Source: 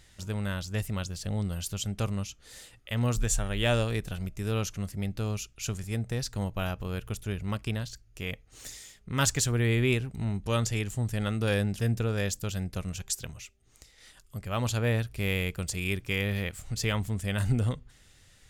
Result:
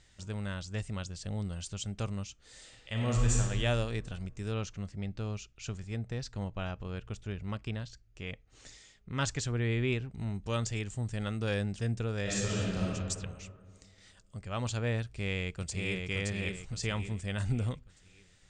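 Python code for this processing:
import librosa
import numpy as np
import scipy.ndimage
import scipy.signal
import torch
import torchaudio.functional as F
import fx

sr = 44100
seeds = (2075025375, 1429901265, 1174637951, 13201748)

y = fx.reverb_throw(x, sr, start_s=2.56, length_s=0.81, rt60_s=1.9, drr_db=-1.5)
y = fx.air_absorb(y, sr, metres=73.0, at=(4.54, 10.18))
y = fx.reverb_throw(y, sr, start_s=12.22, length_s=0.59, rt60_s=2.0, drr_db=-7.5)
y = fx.echo_throw(y, sr, start_s=15.03, length_s=1.05, ms=570, feedback_pct=40, wet_db=-3.0)
y = scipy.signal.sosfilt(scipy.signal.butter(16, 8900.0, 'lowpass', fs=sr, output='sos'), y)
y = F.gain(torch.from_numpy(y), -5.0).numpy()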